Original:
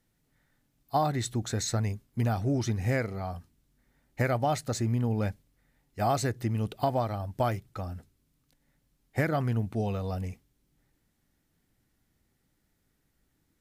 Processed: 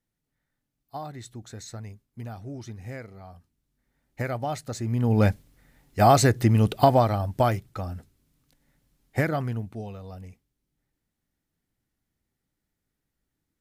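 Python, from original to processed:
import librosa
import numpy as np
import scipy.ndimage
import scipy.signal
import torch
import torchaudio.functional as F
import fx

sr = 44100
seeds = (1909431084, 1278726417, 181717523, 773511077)

y = fx.gain(x, sr, db=fx.line((3.31, -10.0), (4.21, -2.5), (4.8, -2.5), (5.22, 10.0), (6.83, 10.0), (7.77, 3.5), (9.19, 3.5), (9.94, -8.0)))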